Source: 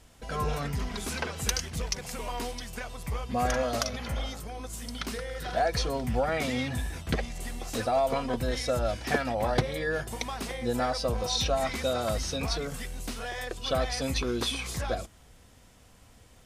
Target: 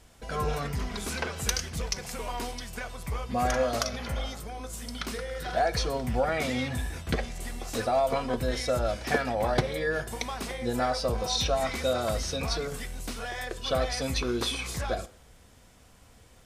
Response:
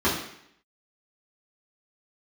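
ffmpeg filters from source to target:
-filter_complex "[0:a]asplit=2[link_01][link_02];[1:a]atrim=start_sample=2205,asetrate=57330,aresample=44100,lowshelf=frequency=340:gain=-11.5[link_03];[link_02][link_03]afir=irnorm=-1:irlink=0,volume=-23.5dB[link_04];[link_01][link_04]amix=inputs=2:normalize=0"

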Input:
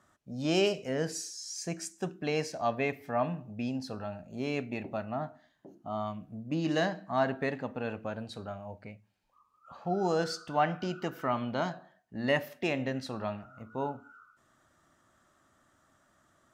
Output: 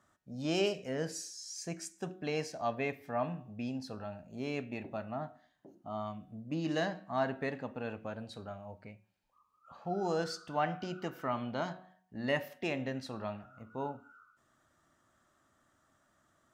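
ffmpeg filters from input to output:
ffmpeg -i in.wav -af "bandreject=frequency=184.7:width_type=h:width=4,bandreject=frequency=369.4:width_type=h:width=4,bandreject=frequency=554.1:width_type=h:width=4,bandreject=frequency=738.8:width_type=h:width=4,bandreject=frequency=923.5:width_type=h:width=4,bandreject=frequency=1108.2:width_type=h:width=4,bandreject=frequency=1292.9:width_type=h:width=4,bandreject=frequency=1477.6:width_type=h:width=4,bandreject=frequency=1662.3:width_type=h:width=4,bandreject=frequency=1847:width_type=h:width=4,bandreject=frequency=2031.7:width_type=h:width=4,bandreject=frequency=2216.4:width_type=h:width=4,bandreject=frequency=2401.1:width_type=h:width=4,bandreject=frequency=2585.8:width_type=h:width=4,bandreject=frequency=2770.5:width_type=h:width=4,bandreject=frequency=2955.2:width_type=h:width=4,bandreject=frequency=3139.9:width_type=h:width=4,bandreject=frequency=3324.6:width_type=h:width=4,bandreject=frequency=3509.3:width_type=h:width=4,bandreject=frequency=3694:width_type=h:width=4,bandreject=frequency=3878.7:width_type=h:width=4,volume=-4dB" out.wav

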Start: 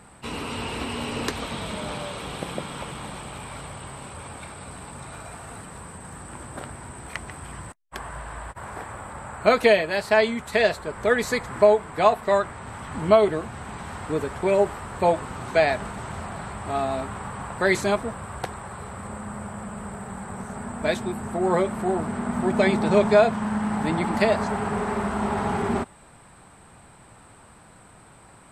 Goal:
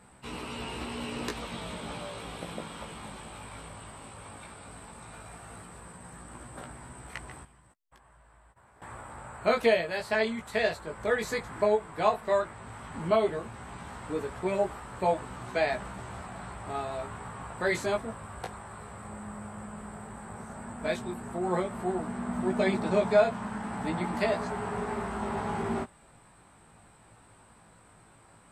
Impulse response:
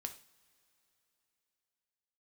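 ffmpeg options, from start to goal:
-filter_complex "[0:a]asettb=1/sr,asplit=3[link_01][link_02][link_03];[link_01]atrim=end=7.434[link_04];[link_02]atrim=start=7.43:end=8.82,asetpts=PTS-STARTPTS,afade=type=in:duration=0.004:curve=qsin,afade=type=out:start_time=1.386:duration=0.004:curve=qsin,acompressor=threshold=-50dB:ratio=12[link_05];[link_03]atrim=start=8.816[link_06];[link_04][link_05]acrossfade=duration=0.004:curve1=hsin:curve2=qsin[link_07];[link_07][link_06]acrossfade=duration=0.004:curve1=qsin:curve2=hsin,flanger=delay=16:depth=2.6:speed=0.13,volume=-4dB"

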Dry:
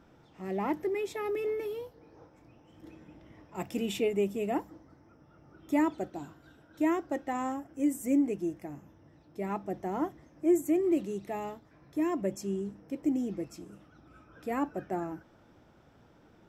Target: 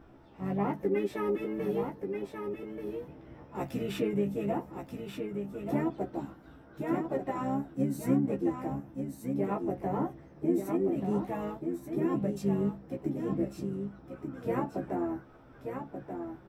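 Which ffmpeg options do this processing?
ffmpeg -i in.wav -filter_complex "[0:a]equalizer=frequency=6600:width=0.37:gain=-8.5,bandreject=frequency=6700:width=5.9,asplit=2[link_01][link_02];[link_02]alimiter=level_in=3.5dB:limit=-24dB:level=0:latency=1:release=69,volume=-3.5dB,volume=-1dB[link_03];[link_01][link_03]amix=inputs=2:normalize=0,acompressor=threshold=-27dB:ratio=3,flanger=delay=2.7:depth=6.6:regen=-44:speed=0.17:shape=triangular,asplit=4[link_04][link_05][link_06][link_07];[link_05]asetrate=22050,aresample=44100,atempo=2,volume=-9dB[link_08];[link_06]asetrate=33038,aresample=44100,atempo=1.33484,volume=-7dB[link_09];[link_07]asetrate=58866,aresample=44100,atempo=0.749154,volume=-16dB[link_10];[link_04][link_08][link_09][link_10]amix=inputs=4:normalize=0,asplit=2[link_11][link_12];[link_12]adelay=15,volume=-3dB[link_13];[link_11][link_13]amix=inputs=2:normalize=0,asplit=2[link_14][link_15];[link_15]aecho=0:1:1183:0.473[link_16];[link_14][link_16]amix=inputs=2:normalize=0" out.wav

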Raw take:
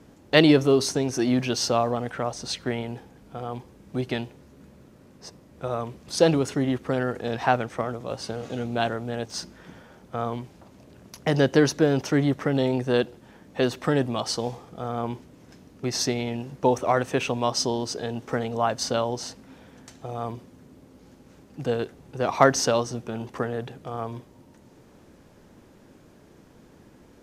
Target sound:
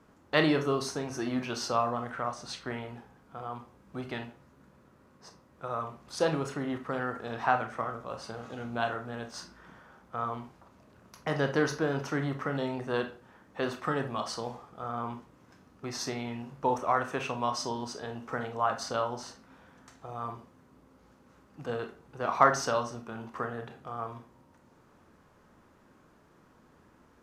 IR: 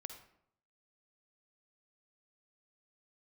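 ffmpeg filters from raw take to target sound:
-filter_complex "[0:a]equalizer=frequency=1200:width_type=o:width=1.1:gain=11[link_01];[1:a]atrim=start_sample=2205,asetrate=88200,aresample=44100[link_02];[link_01][link_02]afir=irnorm=-1:irlink=0"

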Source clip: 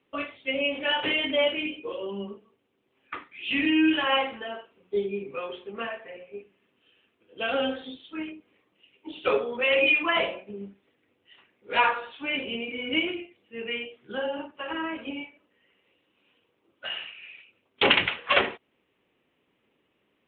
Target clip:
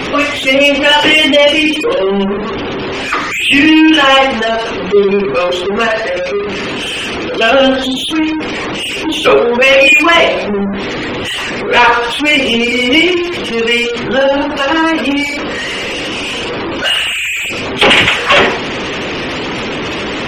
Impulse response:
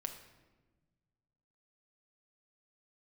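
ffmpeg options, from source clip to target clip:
-af "aeval=exprs='val(0)+0.5*0.0376*sgn(val(0))':channel_layout=same,aeval=exprs='val(0)+0.00126*(sin(2*PI*60*n/s)+sin(2*PI*2*60*n/s)/2+sin(2*PI*3*60*n/s)/3+sin(2*PI*4*60*n/s)/4+sin(2*PI*5*60*n/s)/5)':channel_layout=same,apsyclip=18.5dB,afftfilt=real='re*gte(hypot(re,im),0.1)':imag='im*gte(hypot(re,im),0.1)':win_size=1024:overlap=0.75,volume=-2dB"

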